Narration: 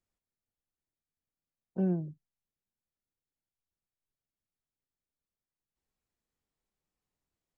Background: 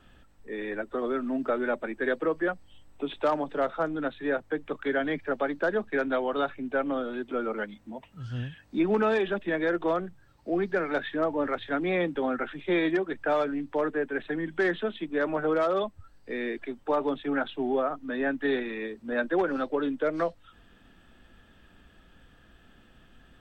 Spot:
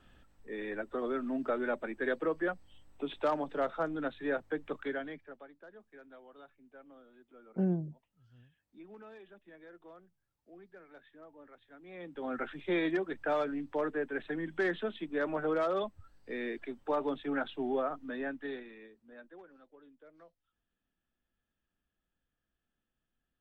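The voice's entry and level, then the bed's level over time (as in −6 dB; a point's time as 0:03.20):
5.80 s, −1.0 dB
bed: 0:04.79 −5 dB
0:05.55 −27 dB
0:11.79 −27 dB
0:12.38 −5.5 dB
0:18.02 −5.5 dB
0:19.57 −30.5 dB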